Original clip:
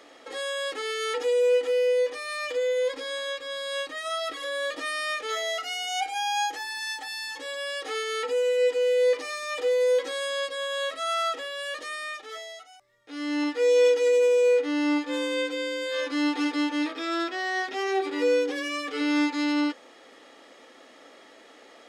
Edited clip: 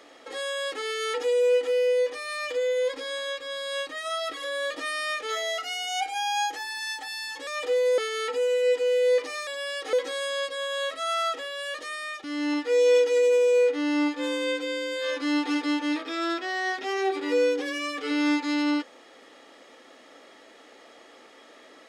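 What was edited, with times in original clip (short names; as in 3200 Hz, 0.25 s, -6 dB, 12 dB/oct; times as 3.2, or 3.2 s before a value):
7.47–7.93 swap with 9.42–9.93
12.24–13.14 cut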